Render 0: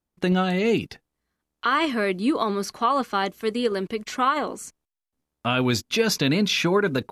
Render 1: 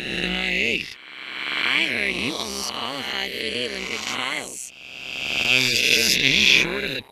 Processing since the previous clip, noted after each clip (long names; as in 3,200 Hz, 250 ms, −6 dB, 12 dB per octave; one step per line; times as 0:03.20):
peak hold with a rise ahead of every peak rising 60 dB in 1.74 s
amplitude modulation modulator 130 Hz, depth 70%
high shelf with overshoot 1,700 Hz +10 dB, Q 3
level −6 dB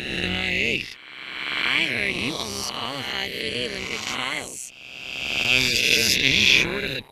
sub-octave generator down 1 octave, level −5 dB
level −1 dB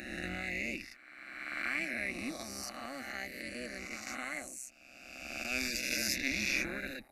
phaser with its sweep stopped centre 650 Hz, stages 8
level −8.5 dB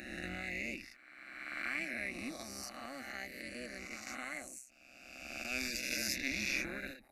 every ending faded ahead of time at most 140 dB per second
level −3 dB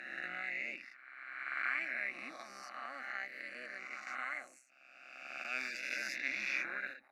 resonant band-pass 1,400 Hz, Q 1.7
on a send at −23 dB: convolution reverb RT60 0.50 s, pre-delay 3 ms
on the sum: level +6.5 dB